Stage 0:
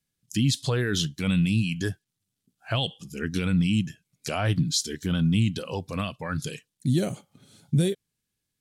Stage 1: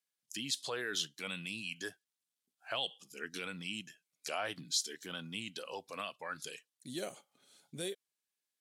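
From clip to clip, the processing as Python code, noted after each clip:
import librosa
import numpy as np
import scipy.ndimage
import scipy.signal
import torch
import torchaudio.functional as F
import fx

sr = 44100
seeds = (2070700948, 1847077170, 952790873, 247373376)

y = scipy.signal.sosfilt(scipy.signal.butter(2, 520.0, 'highpass', fs=sr, output='sos'), x)
y = y * librosa.db_to_amplitude(-7.0)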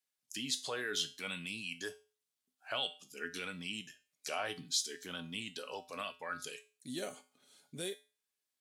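y = fx.comb_fb(x, sr, f0_hz=85.0, decay_s=0.34, harmonics='odd', damping=0.0, mix_pct=70)
y = y * librosa.db_to_amplitude(8.0)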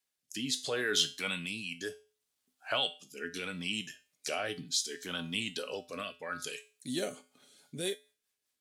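y = fx.rotary_switch(x, sr, hz=0.7, then_hz=5.0, switch_at_s=6.88)
y = y * librosa.db_to_amplitude(7.5)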